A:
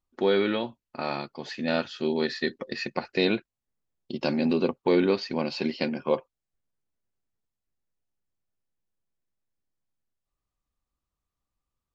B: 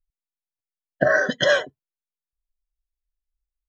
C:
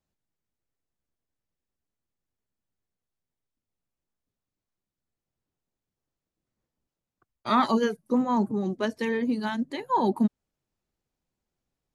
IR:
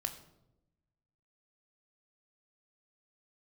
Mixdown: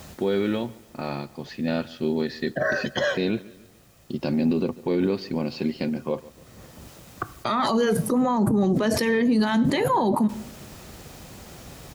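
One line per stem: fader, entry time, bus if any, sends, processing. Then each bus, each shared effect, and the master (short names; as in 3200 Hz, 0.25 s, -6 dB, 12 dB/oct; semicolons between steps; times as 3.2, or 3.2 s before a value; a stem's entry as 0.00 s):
-3.5 dB, 0.00 s, no send, echo send -22.5 dB, low shelf 380 Hz +8 dB
-5.5 dB, 1.55 s, no send, echo send -22 dB, dry
+0.5 dB, 0.00 s, send -8 dB, no echo send, HPF 160 Hz 6 dB/oct; fast leveller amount 100%; auto duck -17 dB, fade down 1.25 s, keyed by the first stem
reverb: on, RT60 0.90 s, pre-delay 18 ms
echo: feedback echo 0.143 s, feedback 44%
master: bell 63 Hz +7 dB 2.5 oct; limiter -14 dBFS, peak gain reduction 10 dB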